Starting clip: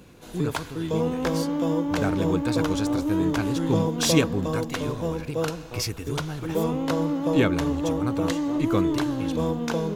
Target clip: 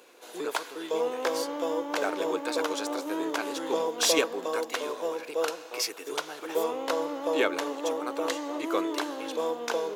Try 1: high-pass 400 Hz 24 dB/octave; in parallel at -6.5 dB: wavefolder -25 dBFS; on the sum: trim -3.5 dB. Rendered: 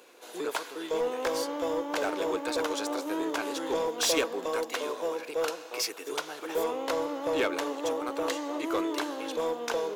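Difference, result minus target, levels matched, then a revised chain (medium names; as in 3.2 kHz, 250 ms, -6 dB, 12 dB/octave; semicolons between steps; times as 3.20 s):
wavefolder: distortion +23 dB
high-pass 400 Hz 24 dB/octave; in parallel at -6.5 dB: wavefolder -14 dBFS; on the sum: trim -3.5 dB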